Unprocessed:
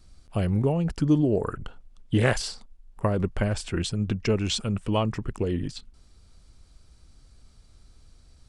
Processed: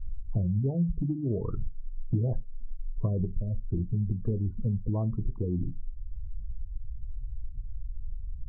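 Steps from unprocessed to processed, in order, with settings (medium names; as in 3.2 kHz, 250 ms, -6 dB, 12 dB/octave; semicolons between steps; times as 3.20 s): low-pass 1.3 kHz 24 dB/octave; spectral gate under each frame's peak -15 dB strong; tilt EQ -4 dB/octave; compression 5:1, threshold -28 dBFS, peak gain reduction 22 dB; on a send: reverberation RT60 0.20 s, pre-delay 3 ms, DRR 15.5 dB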